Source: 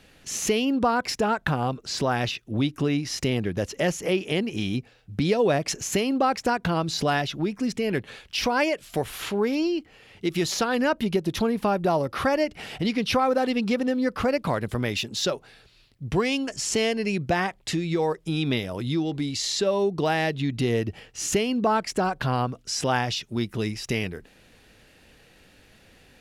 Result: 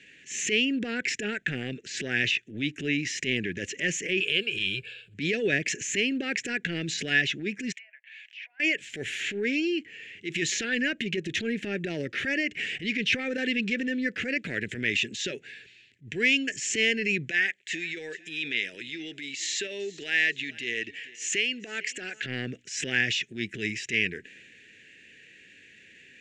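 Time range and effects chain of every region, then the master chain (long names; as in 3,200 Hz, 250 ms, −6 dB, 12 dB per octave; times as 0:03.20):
0:04.20–0:05.14: mu-law and A-law mismatch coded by mu + high-shelf EQ 2,200 Hz +7.5 dB + phaser with its sweep stopped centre 1,300 Hz, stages 8
0:07.72–0:08.60: treble cut that deepens with the level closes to 1,000 Hz, closed at −21 dBFS + downward compressor 2.5 to 1, threshold −47 dBFS + Chebyshev high-pass with heavy ripple 620 Hz, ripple 6 dB
0:17.28–0:22.26: high-pass filter 910 Hz 6 dB per octave + repeating echo 446 ms, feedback 33%, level −23 dB
whole clip: high-pass filter 130 Hz 12 dB per octave; transient designer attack −10 dB, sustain +3 dB; drawn EQ curve 180 Hz 0 dB, 410 Hz +3 dB, 1,100 Hz −28 dB, 1,700 Hz +13 dB, 2,600 Hz +13 dB, 4,800 Hz −3 dB, 7,200 Hz +8 dB, 12,000 Hz −23 dB; level −5 dB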